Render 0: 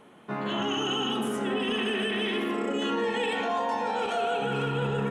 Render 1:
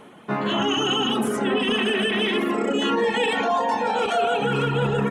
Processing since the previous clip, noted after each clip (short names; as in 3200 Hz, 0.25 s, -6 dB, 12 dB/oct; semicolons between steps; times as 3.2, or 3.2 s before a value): reverb removal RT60 0.66 s; gain +8 dB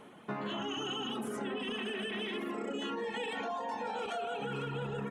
compressor 6:1, threshold -27 dBFS, peak gain reduction 9 dB; gain -7.5 dB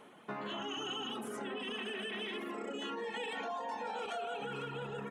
low shelf 220 Hz -8.5 dB; gain -1.5 dB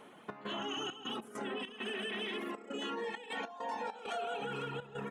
step gate "xx.xxx.x.xx.xxx" 100 bpm -12 dB; gain +1.5 dB